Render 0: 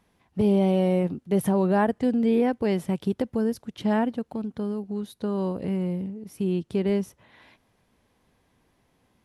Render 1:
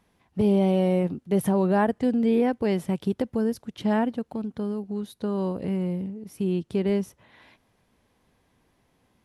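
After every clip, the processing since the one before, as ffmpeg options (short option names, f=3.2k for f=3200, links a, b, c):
-af anull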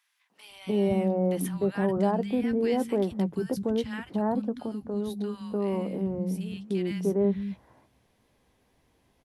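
-filter_complex "[0:a]alimiter=limit=-17.5dB:level=0:latency=1,asplit=2[a][b];[b]adelay=15,volume=-13dB[c];[a][c]amix=inputs=2:normalize=0,acrossover=split=180|1300[d][e][f];[e]adelay=300[g];[d]adelay=500[h];[h][g][f]amix=inputs=3:normalize=0"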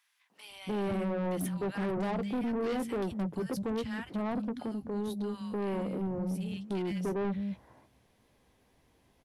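-af "asoftclip=type=tanh:threshold=-29dB"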